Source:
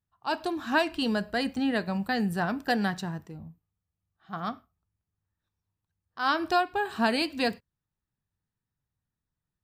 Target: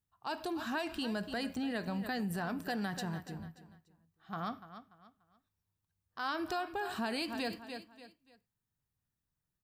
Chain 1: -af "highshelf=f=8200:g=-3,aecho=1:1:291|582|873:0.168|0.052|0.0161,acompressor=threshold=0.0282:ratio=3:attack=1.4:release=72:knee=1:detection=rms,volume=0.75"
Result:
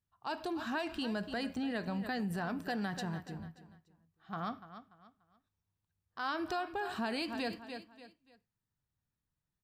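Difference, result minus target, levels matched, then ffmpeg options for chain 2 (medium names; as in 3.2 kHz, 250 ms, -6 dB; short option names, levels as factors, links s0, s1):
8 kHz band -4.0 dB
-af "highshelf=f=8200:g=6.5,aecho=1:1:291|582|873:0.168|0.052|0.0161,acompressor=threshold=0.0282:ratio=3:attack=1.4:release=72:knee=1:detection=rms,volume=0.75"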